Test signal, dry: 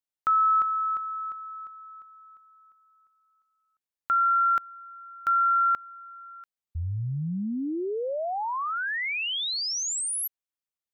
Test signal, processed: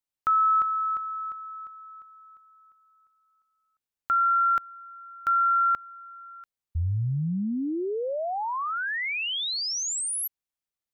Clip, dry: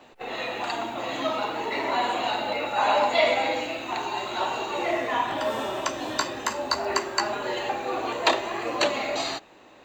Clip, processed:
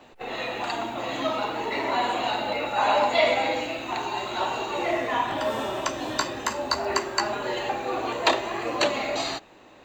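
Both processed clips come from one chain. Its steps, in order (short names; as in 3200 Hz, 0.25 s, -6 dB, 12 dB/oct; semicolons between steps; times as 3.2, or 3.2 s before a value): low shelf 150 Hz +5.5 dB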